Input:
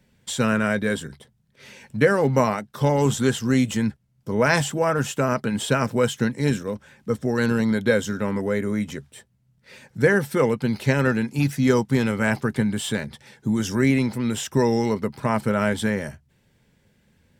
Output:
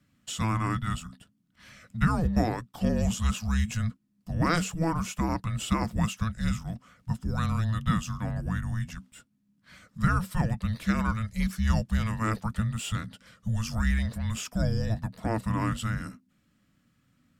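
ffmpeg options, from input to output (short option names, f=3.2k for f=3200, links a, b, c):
-af "afreqshift=-330,volume=-6dB"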